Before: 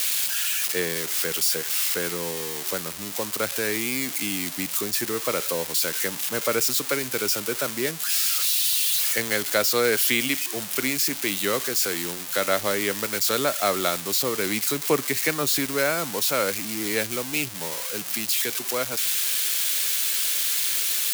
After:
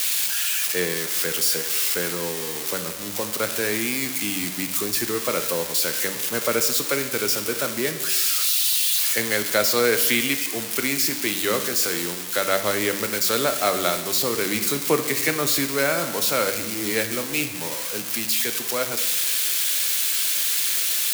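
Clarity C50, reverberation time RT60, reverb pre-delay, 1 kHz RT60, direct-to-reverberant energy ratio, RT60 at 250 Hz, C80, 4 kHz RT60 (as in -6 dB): 9.5 dB, 1.2 s, 10 ms, 1.2 s, 7.0 dB, 1.2 s, 11.0 dB, 1.2 s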